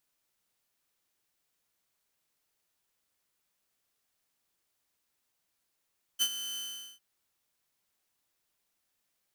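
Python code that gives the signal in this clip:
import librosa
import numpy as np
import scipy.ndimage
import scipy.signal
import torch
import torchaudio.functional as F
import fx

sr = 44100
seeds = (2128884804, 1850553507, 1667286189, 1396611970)

y = fx.adsr_tone(sr, wave='saw', hz=3050.0, attack_ms=29.0, decay_ms=62.0, sustain_db=-12.5, held_s=0.38, release_ms=422.0, level_db=-20.5)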